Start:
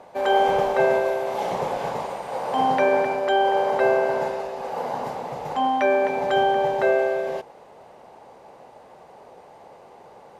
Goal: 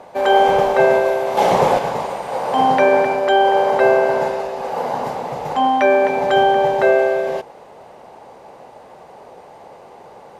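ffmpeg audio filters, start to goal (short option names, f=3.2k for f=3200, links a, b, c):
-filter_complex "[0:a]asettb=1/sr,asplit=3[a][b][c];[a]atrim=end=1.374[d];[b]atrim=start=1.37:end=1.79,asetpts=PTS-STARTPTS,afade=t=in:d=0.004:c=qsin,afade=t=out:st=0.416:d=0.004:c=qsin,acontrast=47[e];[c]atrim=start=1.786[f];[d][e]acrossfade=d=0.004:c1=hsin:c2=qsin[g];[g][f]acrossfade=d=0.004:c1=qsin:c2=hsin,volume=6dB"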